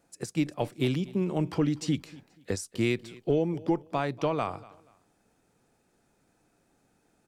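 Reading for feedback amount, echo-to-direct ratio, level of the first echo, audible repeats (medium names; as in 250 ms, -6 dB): 28%, -20.5 dB, -21.0 dB, 2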